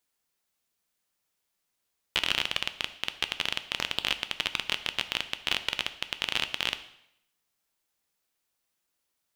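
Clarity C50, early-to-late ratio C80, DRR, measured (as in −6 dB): 13.5 dB, 16.5 dB, 10.0 dB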